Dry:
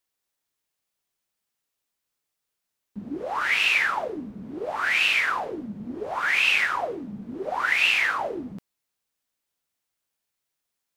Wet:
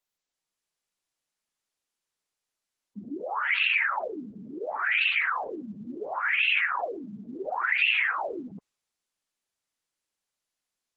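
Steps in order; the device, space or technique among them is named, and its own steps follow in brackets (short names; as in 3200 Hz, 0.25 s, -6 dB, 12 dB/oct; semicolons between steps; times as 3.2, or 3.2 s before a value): noise-suppressed video call (HPF 170 Hz 6 dB/oct; spectral gate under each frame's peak -20 dB strong; AGC gain up to 3.5 dB; gain -5.5 dB; Opus 16 kbps 48000 Hz)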